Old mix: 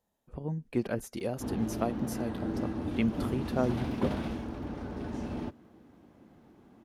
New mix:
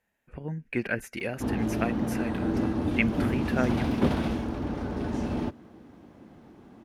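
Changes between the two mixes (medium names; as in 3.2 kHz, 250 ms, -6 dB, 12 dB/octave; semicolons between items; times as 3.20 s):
speech: add high-order bell 2 kHz +14 dB 1.1 oct; background +6.5 dB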